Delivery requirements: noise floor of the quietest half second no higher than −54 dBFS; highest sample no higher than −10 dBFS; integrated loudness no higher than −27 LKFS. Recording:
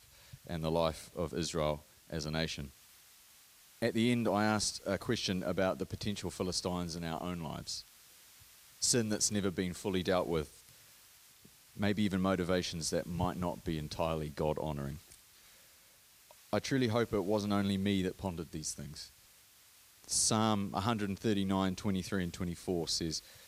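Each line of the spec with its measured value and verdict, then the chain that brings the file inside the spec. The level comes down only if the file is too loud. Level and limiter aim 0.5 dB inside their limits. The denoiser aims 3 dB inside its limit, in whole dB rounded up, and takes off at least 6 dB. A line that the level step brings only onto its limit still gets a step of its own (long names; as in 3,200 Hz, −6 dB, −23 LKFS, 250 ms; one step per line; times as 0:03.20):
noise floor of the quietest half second −62 dBFS: in spec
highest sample −15.5 dBFS: in spec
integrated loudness −34.5 LKFS: in spec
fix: no processing needed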